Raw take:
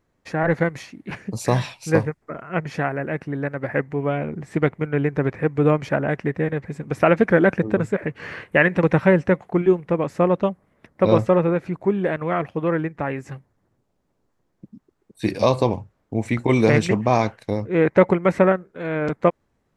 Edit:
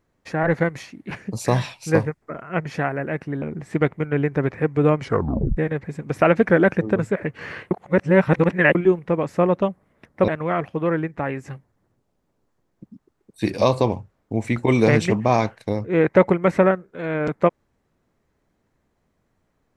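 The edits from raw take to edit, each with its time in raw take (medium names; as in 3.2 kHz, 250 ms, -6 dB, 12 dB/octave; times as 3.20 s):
3.42–4.23 s: delete
5.83 s: tape stop 0.55 s
8.52–9.56 s: reverse
11.09–12.09 s: delete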